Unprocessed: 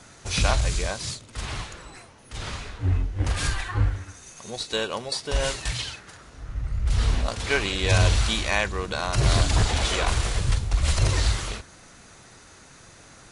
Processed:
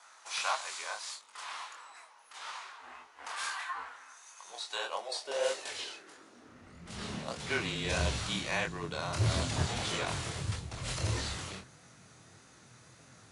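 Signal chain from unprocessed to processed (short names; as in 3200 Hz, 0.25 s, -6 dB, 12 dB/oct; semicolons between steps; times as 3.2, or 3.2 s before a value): chorus 1.6 Hz, delay 20 ms, depth 7.5 ms; frequency shift -26 Hz; high-pass sweep 980 Hz -> 120 Hz, 4.49–7.61; gain -6 dB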